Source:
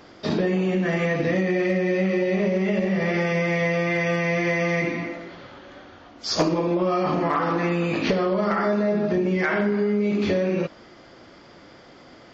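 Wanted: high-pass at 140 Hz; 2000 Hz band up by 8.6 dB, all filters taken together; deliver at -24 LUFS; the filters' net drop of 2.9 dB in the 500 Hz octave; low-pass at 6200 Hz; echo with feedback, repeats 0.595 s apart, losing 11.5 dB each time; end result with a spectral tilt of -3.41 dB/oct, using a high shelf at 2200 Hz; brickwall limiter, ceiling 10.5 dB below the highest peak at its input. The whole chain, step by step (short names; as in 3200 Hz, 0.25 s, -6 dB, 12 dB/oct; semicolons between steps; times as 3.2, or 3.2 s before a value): HPF 140 Hz; LPF 6200 Hz; bell 500 Hz -4.5 dB; bell 2000 Hz +5.5 dB; high shelf 2200 Hz +8.5 dB; limiter -16 dBFS; feedback echo 0.595 s, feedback 27%, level -11.5 dB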